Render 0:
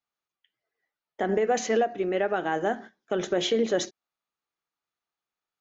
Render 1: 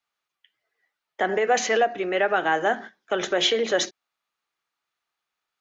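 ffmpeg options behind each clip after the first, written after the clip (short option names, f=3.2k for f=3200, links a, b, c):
-filter_complex "[0:a]equalizer=f=2.2k:w=0.31:g=9,acrossover=split=370|1000[a][b][c];[a]alimiter=level_in=6.5dB:limit=-24dB:level=0:latency=1,volume=-6.5dB[d];[d][b][c]amix=inputs=3:normalize=0"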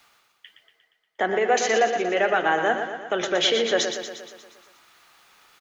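-af "areverse,acompressor=mode=upward:threshold=-35dB:ratio=2.5,areverse,aecho=1:1:118|236|354|472|590|708|826|944:0.422|0.249|0.147|0.0866|0.0511|0.0301|0.0178|0.0105"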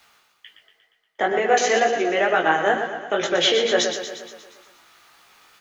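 -af "flanger=delay=17:depth=3.4:speed=2.1,volume=5.5dB"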